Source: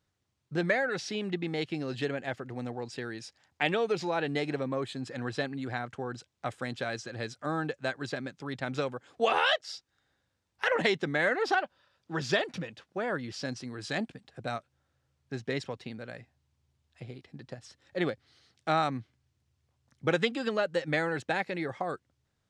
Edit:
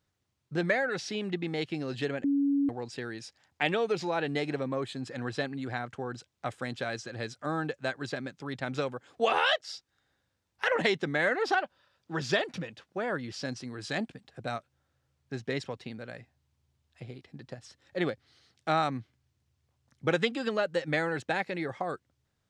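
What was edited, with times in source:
0:02.24–0:02.69: beep over 281 Hz −23 dBFS

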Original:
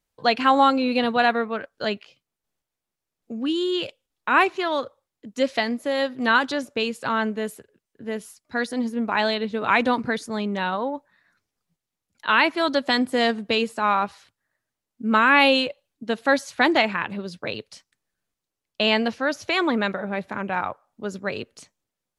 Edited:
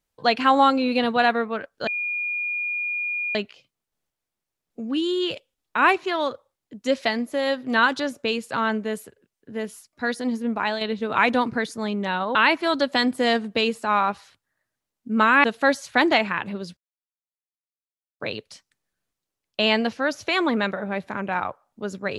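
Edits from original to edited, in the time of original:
0:01.87: insert tone 2,430 Hz −24 dBFS 1.48 s
0:09.06–0:09.33: fade out, to −7.5 dB
0:10.87–0:12.29: remove
0:15.38–0:16.08: remove
0:17.41: splice in silence 1.43 s

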